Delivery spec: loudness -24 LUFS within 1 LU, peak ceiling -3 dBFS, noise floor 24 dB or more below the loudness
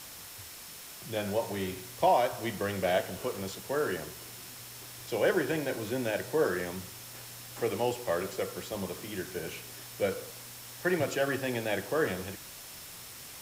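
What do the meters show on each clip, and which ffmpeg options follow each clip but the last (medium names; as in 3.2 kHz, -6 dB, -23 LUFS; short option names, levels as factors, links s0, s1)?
steady tone 5.4 kHz; tone level -57 dBFS; noise floor -47 dBFS; noise floor target -56 dBFS; loudness -32.0 LUFS; peak level -14.0 dBFS; loudness target -24.0 LUFS
-> -af "bandreject=f=5400:w=30"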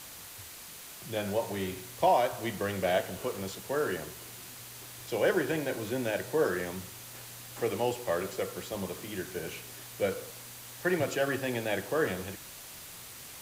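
steady tone not found; noise floor -47 dBFS; noise floor target -56 dBFS
-> -af "afftdn=nr=9:nf=-47"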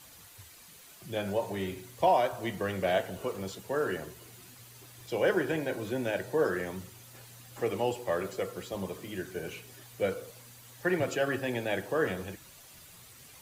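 noise floor -53 dBFS; noise floor target -56 dBFS
-> -af "afftdn=nr=6:nf=-53"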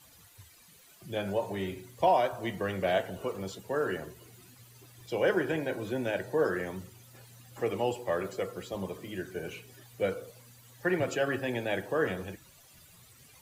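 noise floor -58 dBFS; loudness -32.0 LUFS; peak level -14.0 dBFS; loudness target -24.0 LUFS
-> -af "volume=2.51"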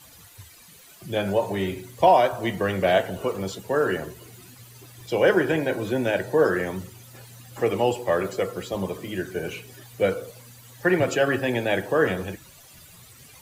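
loudness -24.0 LUFS; peak level -6.0 dBFS; noise floor -50 dBFS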